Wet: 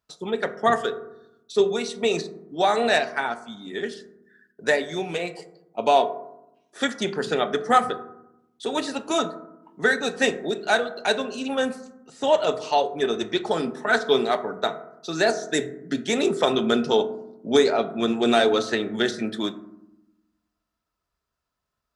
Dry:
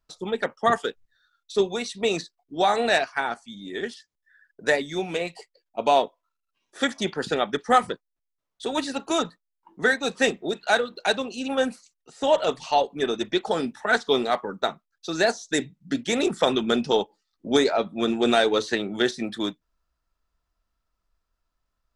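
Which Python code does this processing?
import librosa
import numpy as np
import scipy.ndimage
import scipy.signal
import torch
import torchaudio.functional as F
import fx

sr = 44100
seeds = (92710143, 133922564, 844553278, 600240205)

y = scipy.signal.sosfilt(scipy.signal.butter(2, 78.0, 'highpass', fs=sr, output='sos'), x)
y = fx.rev_fdn(y, sr, rt60_s=0.84, lf_ratio=1.6, hf_ratio=0.35, size_ms=14.0, drr_db=9.0)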